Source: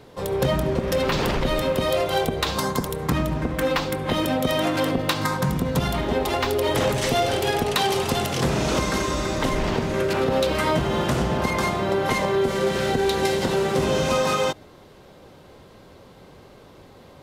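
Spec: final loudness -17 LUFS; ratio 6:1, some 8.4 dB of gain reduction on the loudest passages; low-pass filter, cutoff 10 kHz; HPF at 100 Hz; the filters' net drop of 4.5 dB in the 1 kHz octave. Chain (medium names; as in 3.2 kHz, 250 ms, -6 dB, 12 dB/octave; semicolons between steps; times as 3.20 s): high-pass 100 Hz; low-pass 10 kHz; peaking EQ 1 kHz -6 dB; compression 6:1, threshold -28 dBFS; trim +14.5 dB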